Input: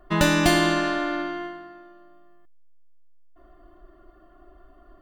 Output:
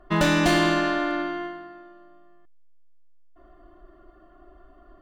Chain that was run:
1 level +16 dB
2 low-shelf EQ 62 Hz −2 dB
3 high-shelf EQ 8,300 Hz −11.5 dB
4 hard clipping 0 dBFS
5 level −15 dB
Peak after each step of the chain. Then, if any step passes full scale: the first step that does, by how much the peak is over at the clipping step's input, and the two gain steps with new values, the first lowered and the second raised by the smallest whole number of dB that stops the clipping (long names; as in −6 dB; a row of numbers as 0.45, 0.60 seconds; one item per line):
+10.5, +10.5, +9.5, 0.0, −15.0 dBFS
step 1, 9.5 dB
step 1 +6 dB, step 5 −5 dB